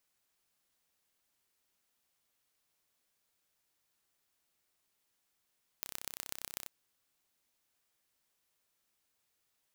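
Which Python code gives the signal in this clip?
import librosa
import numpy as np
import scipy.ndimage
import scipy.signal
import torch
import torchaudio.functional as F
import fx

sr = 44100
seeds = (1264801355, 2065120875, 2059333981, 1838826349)

y = fx.impulse_train(sr, length_s=0.85, per_s=32.4, accent_every=4, level_db=-10.0)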